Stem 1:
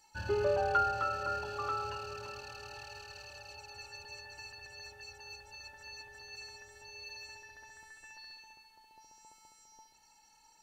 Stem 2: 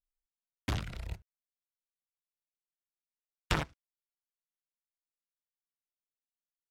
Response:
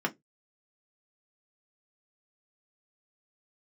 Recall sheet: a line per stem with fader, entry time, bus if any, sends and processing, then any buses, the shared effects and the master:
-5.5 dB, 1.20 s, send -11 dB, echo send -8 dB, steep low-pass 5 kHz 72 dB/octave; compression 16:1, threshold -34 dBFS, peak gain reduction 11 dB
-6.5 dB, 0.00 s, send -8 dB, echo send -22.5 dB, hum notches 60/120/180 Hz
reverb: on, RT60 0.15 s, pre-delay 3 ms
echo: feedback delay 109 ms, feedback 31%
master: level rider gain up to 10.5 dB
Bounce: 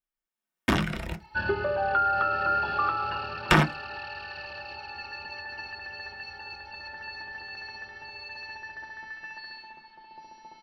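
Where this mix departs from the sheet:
stem 2: missing hum notches 60/120/180 Hz; reverb return +7.5 dB

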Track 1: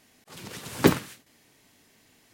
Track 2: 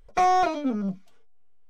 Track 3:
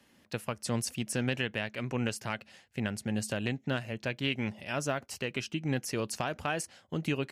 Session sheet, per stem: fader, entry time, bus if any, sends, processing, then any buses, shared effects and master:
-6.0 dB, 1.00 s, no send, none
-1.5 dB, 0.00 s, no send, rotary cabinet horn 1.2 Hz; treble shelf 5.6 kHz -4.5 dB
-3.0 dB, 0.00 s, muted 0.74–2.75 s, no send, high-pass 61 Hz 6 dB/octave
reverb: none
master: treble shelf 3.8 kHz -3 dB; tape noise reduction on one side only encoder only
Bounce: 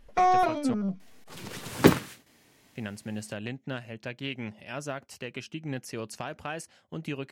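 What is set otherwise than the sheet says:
stem 1 -6.0 dB -> +1.0 dB; stem 2: missing rotary cabinet horn 1.2 Hz; master: missing tape noise reduction on one side only encoder only

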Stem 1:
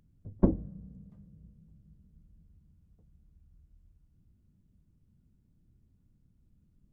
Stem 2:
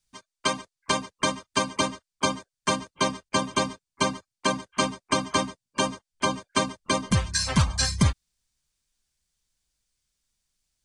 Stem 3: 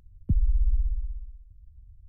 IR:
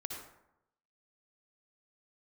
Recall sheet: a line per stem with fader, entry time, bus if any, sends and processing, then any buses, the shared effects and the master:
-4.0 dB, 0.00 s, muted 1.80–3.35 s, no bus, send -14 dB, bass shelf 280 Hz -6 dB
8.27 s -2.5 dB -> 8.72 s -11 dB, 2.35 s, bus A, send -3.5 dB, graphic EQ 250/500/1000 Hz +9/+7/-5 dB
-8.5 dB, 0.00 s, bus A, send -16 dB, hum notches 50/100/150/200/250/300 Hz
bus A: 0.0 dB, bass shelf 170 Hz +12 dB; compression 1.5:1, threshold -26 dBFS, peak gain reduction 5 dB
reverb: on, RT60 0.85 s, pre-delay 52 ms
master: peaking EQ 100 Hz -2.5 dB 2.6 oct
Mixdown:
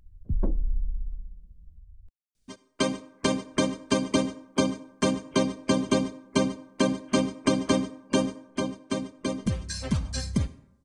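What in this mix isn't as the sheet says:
stem 3: send off; reverb return -9.5 dB

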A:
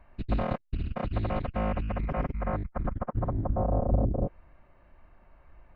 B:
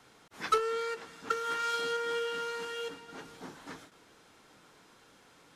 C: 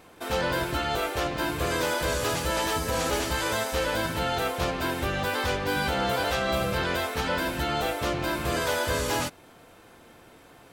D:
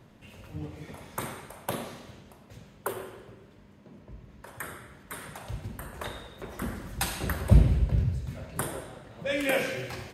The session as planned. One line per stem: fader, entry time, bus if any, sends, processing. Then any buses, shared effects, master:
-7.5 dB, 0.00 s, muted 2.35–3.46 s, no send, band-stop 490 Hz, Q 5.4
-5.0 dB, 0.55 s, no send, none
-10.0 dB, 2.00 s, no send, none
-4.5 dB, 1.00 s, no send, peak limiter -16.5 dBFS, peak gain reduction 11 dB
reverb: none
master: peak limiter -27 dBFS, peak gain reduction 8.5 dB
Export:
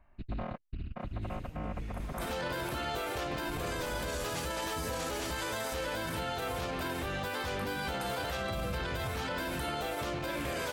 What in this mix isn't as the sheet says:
stem B: muted; stem C -10.0 dB -> -0.5 dB

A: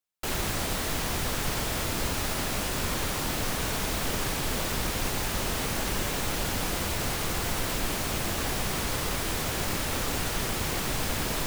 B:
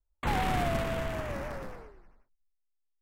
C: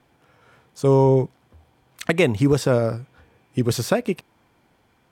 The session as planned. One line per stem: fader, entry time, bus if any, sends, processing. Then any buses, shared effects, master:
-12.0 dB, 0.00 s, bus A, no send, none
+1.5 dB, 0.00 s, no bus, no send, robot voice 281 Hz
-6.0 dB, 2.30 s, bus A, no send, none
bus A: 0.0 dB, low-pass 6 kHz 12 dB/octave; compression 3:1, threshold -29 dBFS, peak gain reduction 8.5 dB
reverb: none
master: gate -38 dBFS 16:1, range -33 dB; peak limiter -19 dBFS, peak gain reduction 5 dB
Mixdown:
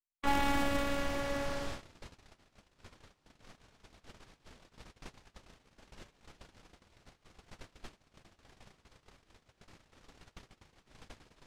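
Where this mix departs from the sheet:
stem C: muted; master: missing peak limiter -19 dBFS, peak gain reduction 5 dB

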